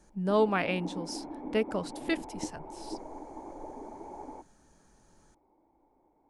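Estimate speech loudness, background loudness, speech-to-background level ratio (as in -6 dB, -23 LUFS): -32.0 LUFS, -42.5 LUFS, 10.5 dB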